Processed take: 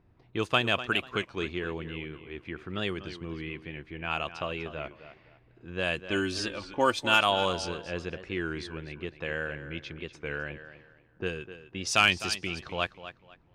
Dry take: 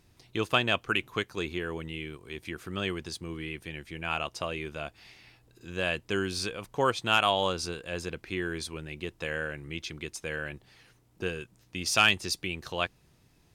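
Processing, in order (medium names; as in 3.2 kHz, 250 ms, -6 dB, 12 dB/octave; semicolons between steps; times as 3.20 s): 6.04–7.22 s: comb 3.4 ms, depth 64%; level-controlled noise filter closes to 1.4 kHz, open at -23.5 dBFS; tape echo 250 ms, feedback 28%, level -12 dB, low-pass 5.5 kHz; warped record 33 1/3 rpm, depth 100 cents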